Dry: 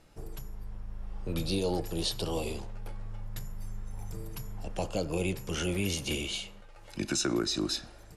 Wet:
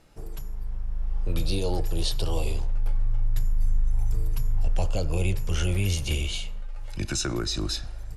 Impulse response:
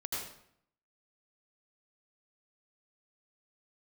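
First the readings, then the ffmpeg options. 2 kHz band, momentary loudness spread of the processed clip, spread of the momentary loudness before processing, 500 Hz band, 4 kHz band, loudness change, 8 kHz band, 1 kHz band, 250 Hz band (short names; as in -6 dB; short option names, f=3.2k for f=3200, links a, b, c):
+1.5 dB, 10 LU, 15 LU, 0.0 dB, +2.0 dB, +4.5 dB, +2.0 dB, +1.5 dB, -1.0 dB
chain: -af "asubboost=boost=8.5:cutoff=81,acontrast=78,volume=-5dB"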